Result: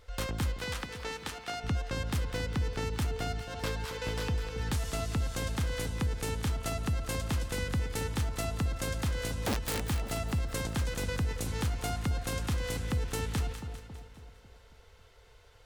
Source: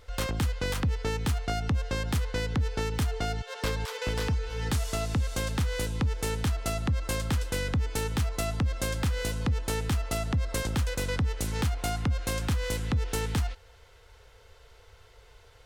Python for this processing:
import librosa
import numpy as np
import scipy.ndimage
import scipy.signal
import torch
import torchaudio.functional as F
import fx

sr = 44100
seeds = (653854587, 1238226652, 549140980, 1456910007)

y = fx.weighting(x, sr, curve='A', at=(0.57, 1.64))
y = fx.overflow_wrap(y, sr, gain_db=22.5, at=(9.38, 9.88))
y = fx.echo_split(y, sr, split_hz=1000.0, low_ms=273, high_ms=202, feedback_pct=52, wet_db=-9.0)
y = y * librosa.db_to_amplitude(-4.0)